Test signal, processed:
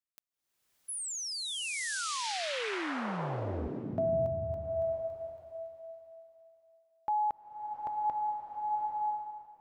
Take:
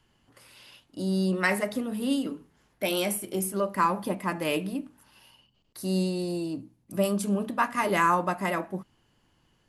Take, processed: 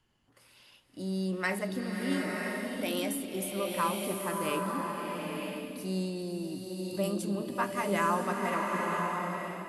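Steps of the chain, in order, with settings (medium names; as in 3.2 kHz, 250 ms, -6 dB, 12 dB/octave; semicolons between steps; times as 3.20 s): swelling reverb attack 980 ms, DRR 0 dB; trim -6.5 dB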